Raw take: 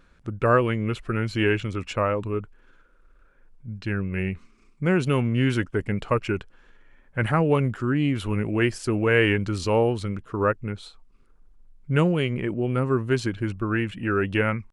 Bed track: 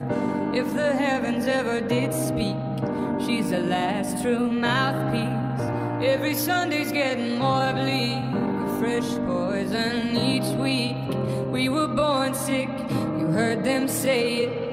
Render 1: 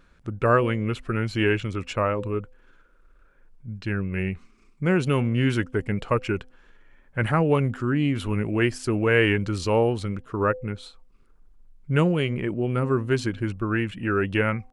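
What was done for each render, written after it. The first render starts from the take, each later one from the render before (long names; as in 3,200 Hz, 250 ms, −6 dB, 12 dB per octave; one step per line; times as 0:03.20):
hum removal 254.8 Hz, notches 3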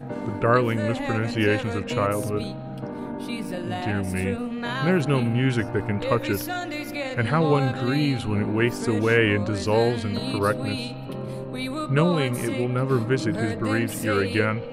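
mix in bed track −6.5 dB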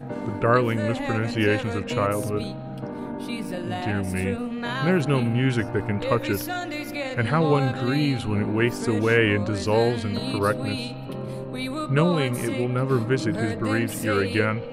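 no processing that can be heard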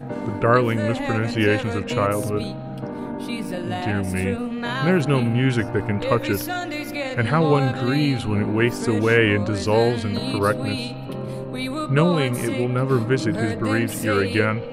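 level +2.5 dB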